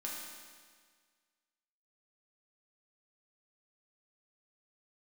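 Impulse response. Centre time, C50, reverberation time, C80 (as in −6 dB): 92 ms, 0.0 dB, 1.7 s, 2.0 dB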